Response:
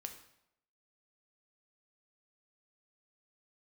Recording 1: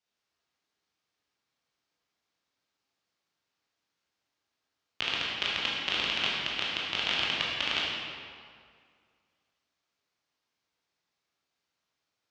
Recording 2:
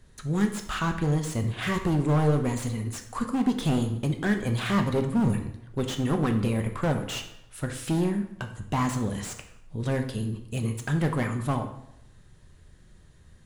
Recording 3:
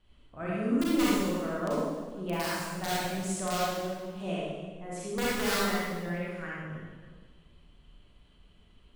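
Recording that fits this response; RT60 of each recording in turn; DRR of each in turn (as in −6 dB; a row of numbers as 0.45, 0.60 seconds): 2; 2.1, 0.80, 1.6 seconds; −5.5, 5.0, −7.0 decibels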